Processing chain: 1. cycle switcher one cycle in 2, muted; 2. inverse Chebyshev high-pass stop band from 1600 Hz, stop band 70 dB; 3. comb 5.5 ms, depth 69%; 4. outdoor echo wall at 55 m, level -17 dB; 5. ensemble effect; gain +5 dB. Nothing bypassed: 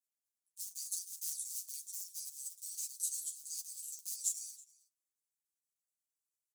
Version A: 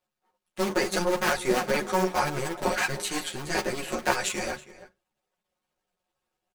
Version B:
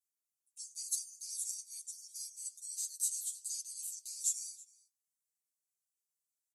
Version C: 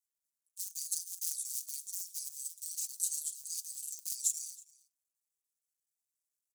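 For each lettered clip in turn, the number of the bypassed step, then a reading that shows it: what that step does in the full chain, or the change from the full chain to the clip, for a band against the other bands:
2, crest factor change -3.0 dB; 1, momentary loudness spread change +4 LU; 5, crest factor change +2.5 dB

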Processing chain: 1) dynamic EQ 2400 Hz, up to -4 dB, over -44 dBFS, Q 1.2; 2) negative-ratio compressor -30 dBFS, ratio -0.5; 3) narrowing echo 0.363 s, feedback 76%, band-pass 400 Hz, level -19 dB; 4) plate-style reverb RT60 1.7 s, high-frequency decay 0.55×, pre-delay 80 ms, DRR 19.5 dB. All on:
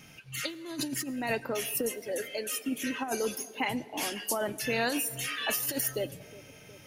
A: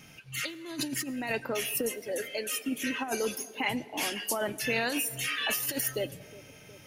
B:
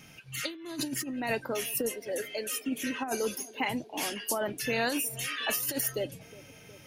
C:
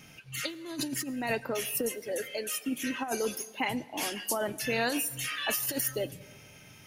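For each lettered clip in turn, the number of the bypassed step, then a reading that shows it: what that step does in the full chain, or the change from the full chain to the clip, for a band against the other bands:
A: 1, 2 kHz band +2.5 dB; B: 4, echo-to-direct -18.0 dB to -22.5 dB; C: 3, echo-to-direct -18.0 dB to -19.5 dB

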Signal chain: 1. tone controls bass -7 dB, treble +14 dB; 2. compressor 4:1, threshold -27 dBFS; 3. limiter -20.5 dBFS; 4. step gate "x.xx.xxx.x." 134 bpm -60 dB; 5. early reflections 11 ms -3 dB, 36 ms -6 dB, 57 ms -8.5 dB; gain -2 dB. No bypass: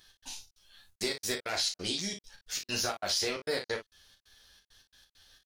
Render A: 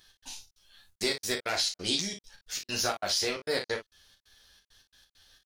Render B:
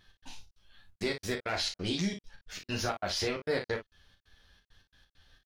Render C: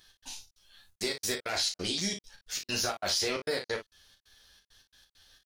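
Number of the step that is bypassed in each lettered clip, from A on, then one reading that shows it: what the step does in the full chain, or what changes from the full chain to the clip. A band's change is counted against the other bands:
3, momentary loudness spread change +2 LU; 1, 8 kHz band -9.0 dB; 2, mean gain reduction 5.5 dB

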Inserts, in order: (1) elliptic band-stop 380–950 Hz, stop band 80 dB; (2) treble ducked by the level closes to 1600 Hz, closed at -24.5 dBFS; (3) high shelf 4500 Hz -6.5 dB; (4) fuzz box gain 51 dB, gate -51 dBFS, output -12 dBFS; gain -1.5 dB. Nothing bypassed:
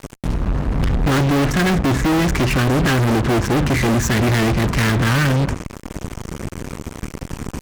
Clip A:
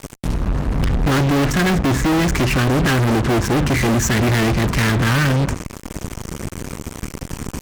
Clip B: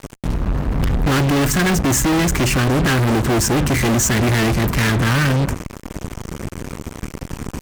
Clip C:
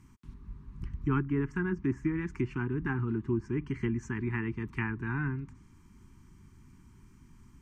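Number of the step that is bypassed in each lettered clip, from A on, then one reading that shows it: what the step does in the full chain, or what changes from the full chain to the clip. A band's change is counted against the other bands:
3, 8 kHz band +2.0 dB; 2, 8 kHz band +7.5 dB; 4, distortion -2 dB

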